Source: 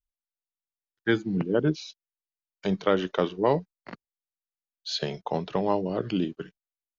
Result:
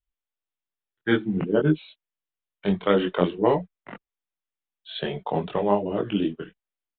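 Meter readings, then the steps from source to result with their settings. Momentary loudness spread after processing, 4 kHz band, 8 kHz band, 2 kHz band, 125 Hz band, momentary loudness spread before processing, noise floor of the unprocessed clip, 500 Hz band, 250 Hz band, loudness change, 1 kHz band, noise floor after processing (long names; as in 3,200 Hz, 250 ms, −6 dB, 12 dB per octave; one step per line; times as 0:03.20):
11 LU, −0.5 dB, can't be measured, +2.0 dB, +2.5 dB, 17 LU, below −85 dBFS, +3.0 dB, +3.5 dB, +3.0 dB, +2.5 dB, below −85 dBFS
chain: downsampling to 8,000 Hz
multi-voice chorus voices 4, 1.2 Hz, delay 22 ms, depth 3.2 ms
level +5.5 dB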